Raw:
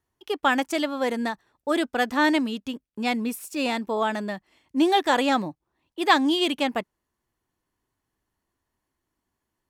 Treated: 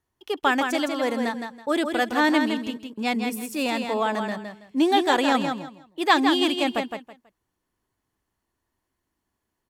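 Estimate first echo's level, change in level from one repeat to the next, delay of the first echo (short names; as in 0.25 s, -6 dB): -6.0 dB, -13.0 dB, 0.163 s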